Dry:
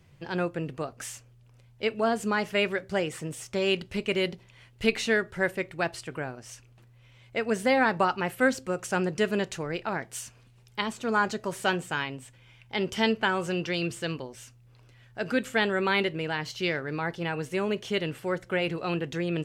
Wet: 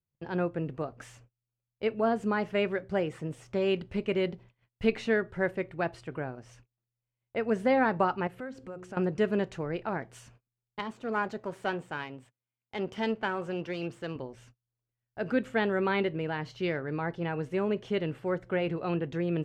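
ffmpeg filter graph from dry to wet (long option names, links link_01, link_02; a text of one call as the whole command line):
ffmpeg -i in.wav -filter_complex "[0:a]asettb=1/sr,asplit=3[link_01][link_02][link_03];[link_01]atrim=end=8.274[link_04];[link_02]atrim=start=8.27:end=8.97,asetpts=PTS-STARTPTS,afade=type=in:duration=0.004:curve=qsin,afade=type=out:start_time=0.696:duration=0.004:curve=qsin,highshelf=frequency=12000:gain=-4.5,bandreject=frequency=90.74:width_type=h:width=4,bandreject=frequency=181.48:width_type=h:width=4,bandreject=frequency=272.22:width_type=h:width=4,bandreject=frequency=362.96:width_type=h:width=4,bandreject=frequency=453.7:width_type=h:width=4,acompressor=threshold=-41dB:ratio=2.5:attack=3.2:release=140:knee=1:detection=peak[link_05];[link_03]atrim=start=8.966[link_06];[link_04][link_05]acrossfade=duration=0.004:curve1=hsin:curve2=qsin[link_07];[link_07][link_06]acrossfade=duration=0.004:curve1=qsin:curve2=hsin,asettb=1/sr,asplit=3[link_08][link_09][link_10];[link_08]atrim=end=10.794[link_11];[link_09]atrim=start=10.79:end=14.16,asetpts=PTS-STARTPTS,afade=type=in:duration=0.004:curve=qsin,afade=type=out:start_time=3.366:duration=0.004:curve=qsin,aeval=exprs='if(lt(val(0),0),0.447*val(0),val(0))':channel_layout=same,highpass=frequency=150:poles=1[link_12];[link_10]atrim=start=14.156[link_13];[link_11][link_12]acrossfade=duration=0.004:curve1=hsin:curve2=qsin[link_14];[link_14][link_13]acrossfade=duration=0.004:curve1=qsin:curve2=hsin,agate=range=-33dB:threshold=-50dB:ratio=16:detection=peak,lowpass=frequency=1100:poles=1" out.wav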